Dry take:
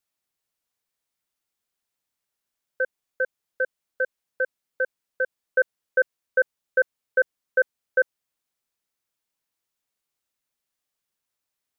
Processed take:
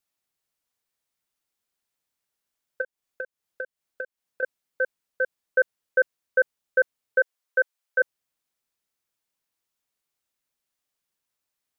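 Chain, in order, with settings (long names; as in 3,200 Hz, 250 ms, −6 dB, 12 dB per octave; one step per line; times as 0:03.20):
0:02.81–0:04.43: downward compressor 12 to 1, threshold −31 dBFS, peak gain reduction 12 dB
0:07.19–0:07.99: high-pass filter 420 Hz → 680 Hz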